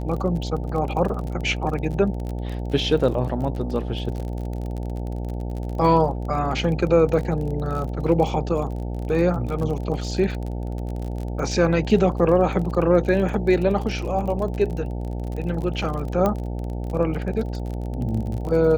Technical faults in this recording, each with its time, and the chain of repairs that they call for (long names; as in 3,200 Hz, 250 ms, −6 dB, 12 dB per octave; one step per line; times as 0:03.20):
mains buzz 60 Hz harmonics 15 −28 dBFS
surface crackle 33 per second −29 dBFS
0:16.26: click −10 dBFS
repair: click removal
hum removal 60 Hz, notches 15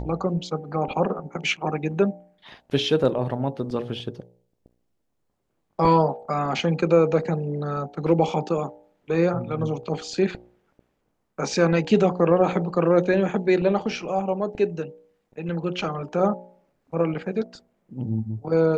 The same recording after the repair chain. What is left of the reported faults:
none of them is left